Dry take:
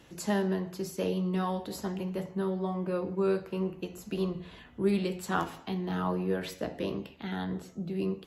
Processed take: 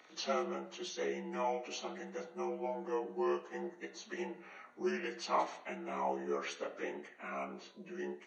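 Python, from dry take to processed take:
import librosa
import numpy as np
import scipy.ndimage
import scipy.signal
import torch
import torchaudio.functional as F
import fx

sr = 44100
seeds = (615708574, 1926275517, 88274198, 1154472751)

y = fx.partial_stretch(x, sr, pct=84)
y = scipy.signal.sosfilt(scipy.signal.butter(2, 540.0, 'highpass', fs=sr, output='sos'), y)
y = y * librosa.db_to_amplitude(1.5)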